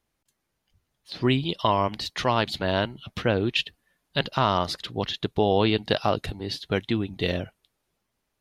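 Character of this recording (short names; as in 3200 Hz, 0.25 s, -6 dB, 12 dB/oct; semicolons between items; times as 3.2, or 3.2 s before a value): noise floor -79 dBFS; spectral tilt -4.0 dB/oct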